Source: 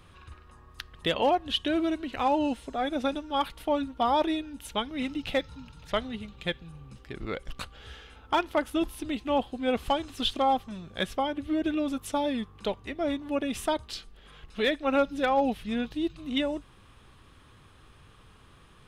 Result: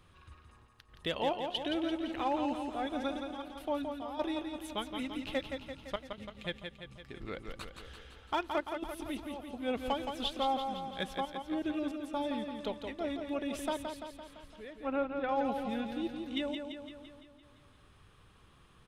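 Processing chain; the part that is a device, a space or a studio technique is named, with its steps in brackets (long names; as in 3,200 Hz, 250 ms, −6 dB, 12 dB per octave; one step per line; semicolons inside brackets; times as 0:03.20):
0:14.59–0:15.29: high-frequency loss of the air 400 metres
trance gate with a delay (gate pattern "xxx.xx.xxxxx" 68 BPM −12 dB; repeating echo 170 ms, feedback 59%, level −6 dB)
level −7.5 dB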